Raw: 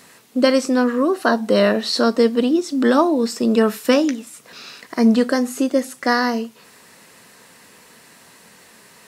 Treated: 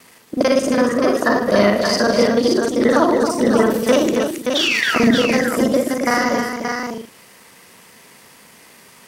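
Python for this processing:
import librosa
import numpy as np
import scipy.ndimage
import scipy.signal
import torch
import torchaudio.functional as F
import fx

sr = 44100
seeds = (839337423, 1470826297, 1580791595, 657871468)

p1 = fx.local_reverse(x, sr, ms=37.0)
p2 = fx.spec_paint(p1, sr, seeds[0], shape='fall', start_s=4.55, length_s=0.45, low_hz=1100.0, high_hz=3300.0, level_db=-18.0)
p3 = fx.formant_shift(p2, sr, semitones=2)
y = p3 + fx.echo_multitap(p3, sr, ms=(64, 157, 273, 577), db=(-8.5, -16.5, -6.5, -5.5), dry=0)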